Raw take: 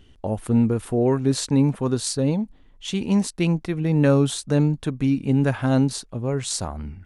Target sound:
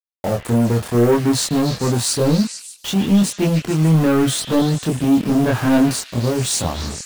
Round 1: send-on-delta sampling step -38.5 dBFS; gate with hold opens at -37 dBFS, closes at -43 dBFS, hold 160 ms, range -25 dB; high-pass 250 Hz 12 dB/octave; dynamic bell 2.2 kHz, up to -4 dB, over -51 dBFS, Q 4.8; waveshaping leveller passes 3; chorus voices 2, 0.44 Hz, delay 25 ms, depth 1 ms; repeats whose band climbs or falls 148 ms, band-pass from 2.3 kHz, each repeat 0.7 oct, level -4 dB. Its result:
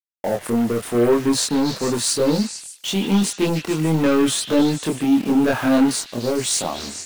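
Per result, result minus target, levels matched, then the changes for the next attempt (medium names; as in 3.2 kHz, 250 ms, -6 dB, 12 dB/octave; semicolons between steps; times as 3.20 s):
125 Hz band -6.5 dB; send-on-delta sampling: distortion -6 dB
change: high-pass 80 Hz 12 dB/octave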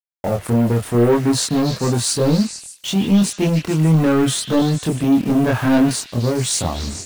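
send-on-delta sampling: distortion -6 dB
change: send-on-delta sampling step -32.5 dBFS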